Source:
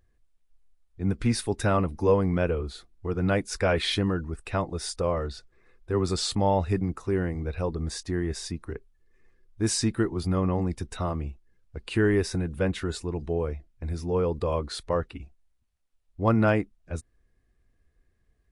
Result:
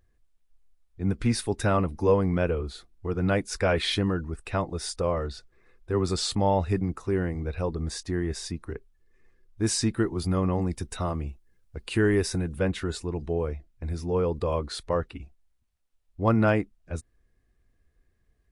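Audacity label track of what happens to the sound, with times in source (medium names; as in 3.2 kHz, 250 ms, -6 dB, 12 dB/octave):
10.070000	12.580000	treble shelf 7.2 kHz +7.5 dB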